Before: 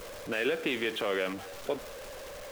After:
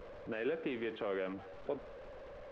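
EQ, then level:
head-to-tape spacing loss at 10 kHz 39 dB
−4.0 dB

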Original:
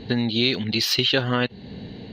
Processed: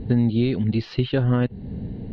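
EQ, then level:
high-frequency loss of the air 190 metres
spectral tilt −4 dB per octave
−4.5 dB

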